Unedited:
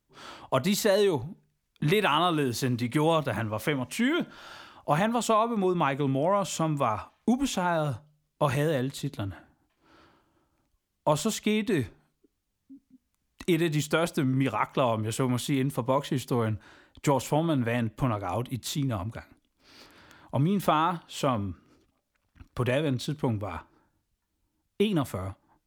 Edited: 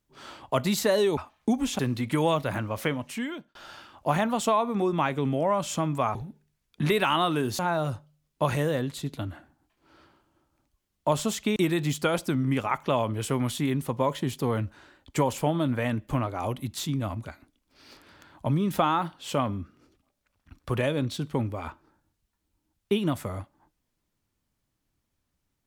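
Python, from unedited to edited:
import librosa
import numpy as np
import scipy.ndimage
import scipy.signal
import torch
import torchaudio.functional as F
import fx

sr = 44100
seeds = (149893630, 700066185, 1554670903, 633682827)

y = fx.edit(x, sr, fx.swap(start_s=1.17, length_s=1.44, other_s=6.97, other_length_s=0.62),
    fx.fade_out_span(start_s=3.71, length_s=0.66),
    fx.cut(start_s=11.56, length_s=1.89), tone=tone)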